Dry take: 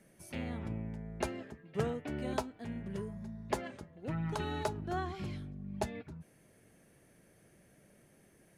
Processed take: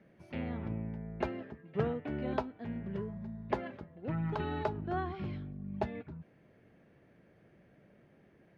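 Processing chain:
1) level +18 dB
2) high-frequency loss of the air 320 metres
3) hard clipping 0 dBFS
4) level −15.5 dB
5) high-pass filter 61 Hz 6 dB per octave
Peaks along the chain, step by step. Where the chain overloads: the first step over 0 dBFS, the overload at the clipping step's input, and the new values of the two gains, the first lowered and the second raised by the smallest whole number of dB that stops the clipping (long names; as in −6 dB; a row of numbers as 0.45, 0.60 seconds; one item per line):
−2.0, −2.5, −2.5, −18.0, −17.5 dBFS
no step passes full scale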